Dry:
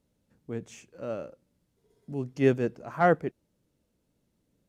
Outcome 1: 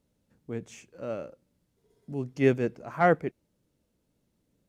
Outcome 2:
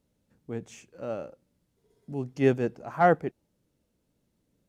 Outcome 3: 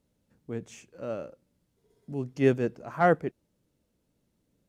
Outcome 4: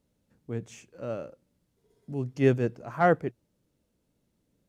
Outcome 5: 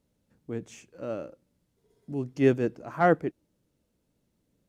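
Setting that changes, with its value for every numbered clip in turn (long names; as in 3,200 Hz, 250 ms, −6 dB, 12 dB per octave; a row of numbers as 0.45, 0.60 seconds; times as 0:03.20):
dynamic equaliser, frequency: 2,200, 790, 8,800, 120, 310 Hertz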